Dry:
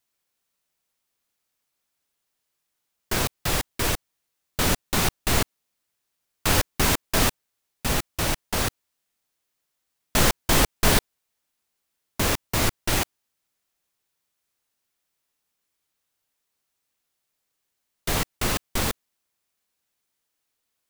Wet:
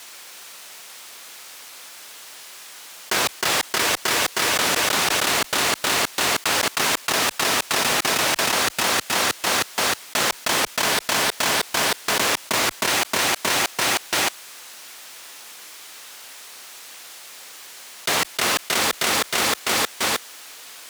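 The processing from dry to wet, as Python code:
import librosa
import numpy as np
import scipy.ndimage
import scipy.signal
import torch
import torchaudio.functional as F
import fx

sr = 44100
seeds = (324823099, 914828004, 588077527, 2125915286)

y = fx.weighting(x, sr, curve='A')
y = fx.echo_feedback(y, sr, ms=313, feedback_pct=46, wet_db=-14.0)
y = fx.env_flatten(y, sr, amount_pct=100)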